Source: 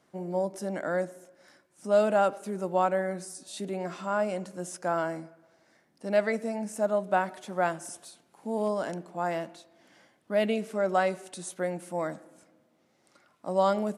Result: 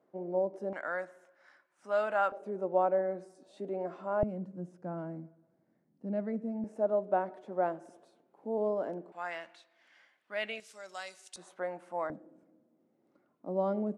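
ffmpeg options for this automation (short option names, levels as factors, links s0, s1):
-af "asetnsamples=n=441:p=0,asendcmd='0.73 bandpass f 1400;2.32 bandpass f 500;4.23 bandpass f 180;6.64 bandpass f 440;9.12 bandpass f 2100;10.6 bandpass f 5600;11.36 bandpass f 980;12.1 bandpass f 290',bandpass=f=460:t=q:w=1.2:csg=0"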